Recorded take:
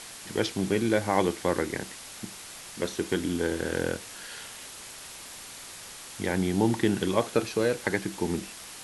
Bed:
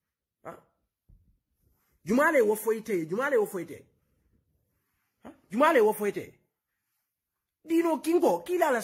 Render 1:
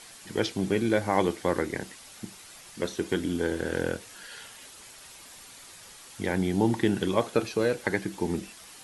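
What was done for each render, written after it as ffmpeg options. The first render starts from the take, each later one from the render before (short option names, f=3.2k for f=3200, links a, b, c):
-af "afftdn=nr=7:nf=-44"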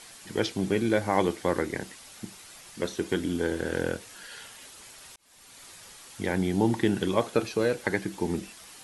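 -filter_complex "[0:a]asplit=2[a][b];[a]atrim=end=5.16,asetpts=PTS-STARTPTS,afade=t=out:st=5.156:d=0.004:c=hsin[c];[b]atrim=start=5.16,asetpts=PTS-STARTPTS,afade=t=in:d=0.49[d];[c][d]concat=n=2:v=0:a=1"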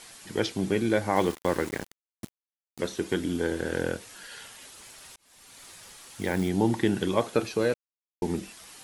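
-filter_complex "[0:a]asettb=1/sr,asplit=3[a][b][c];[a]atrim=end=1.164[d];[b]atrim=start=1.16:end=2.79,asetpts=PTS-STARTPTS,afade=t=in:d=0.004:c=qsin,afade=t=out:st=1.626:d=0.004:c=qsin,aeval=exprs='val(0)*gte(abs(val(0)),0.0168)':c=same[e];[c]atrim=start=2.786[f];[d][e]acrossfade=d=0.004:c1=hsin:c2=qsin[g];[g][f]acrossfade=d=0.004:c1=qsin:c2=hsin,asplit=3[h][i][j];[h]afade=t=out:st=4.73:d=0.02[k];[i]acrusher=bits=5:mode=log:mix=0:aa=0.000001,afade=t=in:st=4.73:d=0.02,afade=t=out:st=6.48:d=0.02[l];[j]afade=t=in:st=6.48:d=0.02[m];[k][l][m]amix=inputs=3:normalize=0,asplit=3[n][o][p];[n]atrim=end=7.74,asetpts=PTS-STARTPTS,afade=t=out:st=7.736:d=0.004:c=hsin[q];[o]atrim=start=7.74:end=8.22,asetpts=PTS-STARTPTS,volume=0[r];[p]atrim=start=8.22,asetpts=PTS-STARTPTS,afade=t=in:d=0.004:c=hsin[s];[q][r][s]concat=n=3:v=0:a=1"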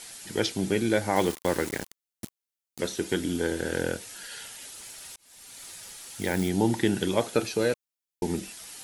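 -af "highshelf=f=4k:g=7,bandreject=f=1.1k:w=9.4"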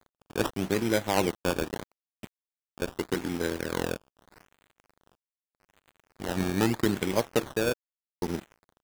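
-af "acrusher=samples=15:mix=1:aa=0.000001:lfo=1:lforange=15:lforate=0.81,aeval=exprs='sgn(val(0))*max(abs(val(0))-0.015,0)':c=same"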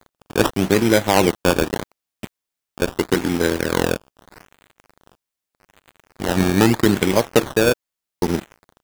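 -af "volume=11dB,alimiter=limit=-2dB:level=0:latency=1"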